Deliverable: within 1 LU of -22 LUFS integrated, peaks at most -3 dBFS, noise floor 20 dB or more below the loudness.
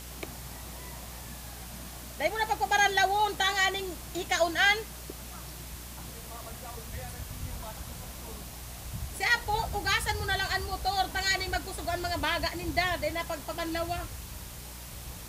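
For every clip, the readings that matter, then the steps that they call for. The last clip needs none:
hum 60 Hz; highest harmonic 480 Hz; hum level -44 dBFS; noise floor -43 dBFS; noise floor target -49 dBFS; loudness -29.0 LUFS; peak level -11.0 dBFS; loudness target -22.0 LUFS
-> de-hum 60 Hz, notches 8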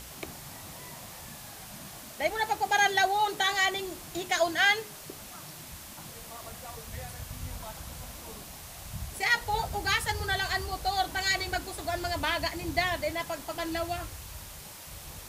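hum not found; noise floor -46 dBFS; noise floor target -49 dBFS
-> noise reduction 6 dB, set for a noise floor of -46 dBFS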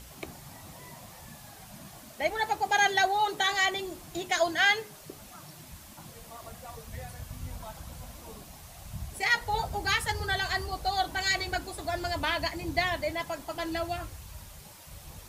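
noise floor -49 dBFS; loudness -28.5 LUFS; peak level -11.0 dBFS; loudness target -22.0 LUFS
-> trim +6.5 dB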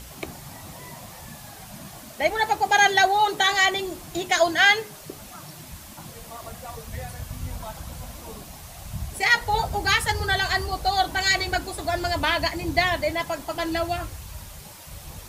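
loudness -22.0 LUFS; peak level -4.5 dBFS; noise floor -43 dBFS

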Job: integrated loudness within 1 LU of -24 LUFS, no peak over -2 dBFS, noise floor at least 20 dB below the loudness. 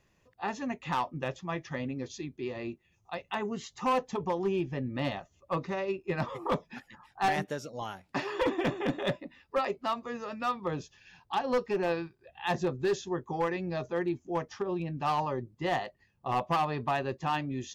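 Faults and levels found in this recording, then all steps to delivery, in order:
clipped samples 1.1%; clipping level -22.5 dBFS; loudness -33.0 LUFS; peak level -22.5 dBFS; loudness target -24.0 LUFS
-> clip repair -22.5 dBFS; trim +9 dB

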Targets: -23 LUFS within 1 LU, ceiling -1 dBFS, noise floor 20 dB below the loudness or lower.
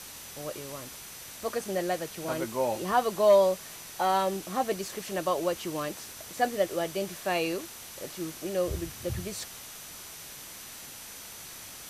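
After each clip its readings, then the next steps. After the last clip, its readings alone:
steady tone 6 kHz; tone level -53 dBFS; noise floor -45 dBFS; noise floor target -50 dBFS; loudness -30.0 LUFS; peak level -12.0 dBFS; loudness target -23.0 LUFS
-> band-stop 6 kHz, Q 30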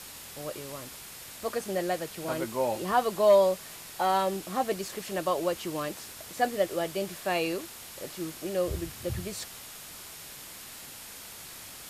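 steady tone not found; noise floor -45 dBFS; noise floor target -50 dBFS
-> noise reduction 6 dB, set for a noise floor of -45 dBFS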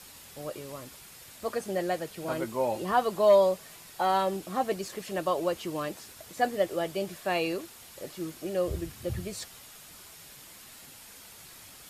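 noise floor -50 dBFS; loudness -30.0 LUFS; peak level -12.0 dBFS; loudness target -23.0 LUFS
-> trim +7 dB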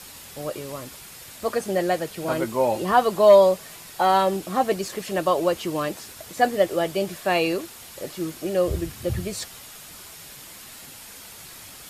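loudness -23.0 LUFS; peak level -5.0 dBFS; noise floor -43 dBFS

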